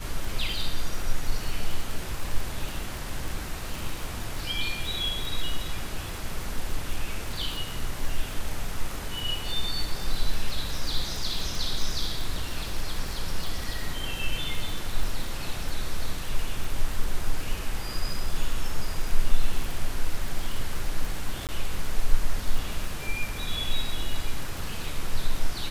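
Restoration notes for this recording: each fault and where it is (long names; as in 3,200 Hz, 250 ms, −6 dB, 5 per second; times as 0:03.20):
surface crackle 42 per second −29 dBFS
0:21.47–0:21.49: drop-out 18 ms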